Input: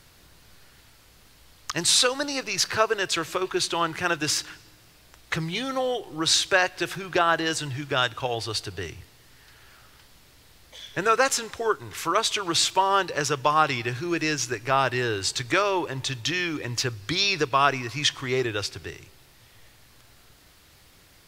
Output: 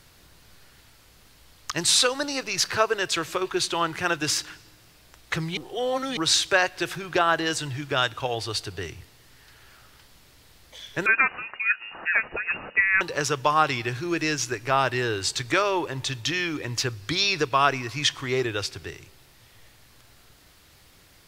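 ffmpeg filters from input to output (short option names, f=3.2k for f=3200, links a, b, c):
-filter_complex "[0:a]asettb=1/sr,asplit=3[a][b][c];[a]atrim=end=11.064[d];[b]atrim=start=11.06:end=13.01,asetpts=PTS-STARTPTS,afade=t=in:d=0.004:c=qsin,afade=t=out:st=1.946:d=0.004:c=qsin,lowpass=f=2.5k:t=q:w=0.5098,lowpass=f=2.5k:t=q:w=0.6013,lowpass=f=2.5k:t=q:w=0.9,lowpass=f=2.5k:t=q:w=2.563,afreqshift=-2900[e];[c]atrim=start=13.006[f];[d][e]acrossfade=d=0.004:c1=hsin:c2=qsin[g];[g][f]acrossfade=d=0.004:c1=qsin:c2=hsin,asplit=3[h][i][j];[h]atrim=end=5.572[k];[i]atrim=start=5.568:end=6.172,asetpts=PTS-STARTPTS,areverse[l];[j]atrim=start=6.168[m];[k][l]acrossfade=d=0.004:c1=hsin:c2=hsin[n];[n][m]acrossfade=d=0.004:c1=hsin:c2=hsin"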